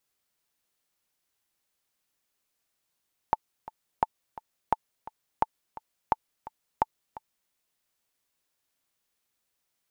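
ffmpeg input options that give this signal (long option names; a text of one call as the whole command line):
ffmpeg -f lavfi -i "aevalsrc='pow(10,(-8.5-18*gte(mod(t,2*60/172),60/172))/20)*sin(2*PI*880*mod(t,60/172))*exp(-6.91*mod(t,60/172)/0.03)':duration=4.18:sample_rate=44100" out.wav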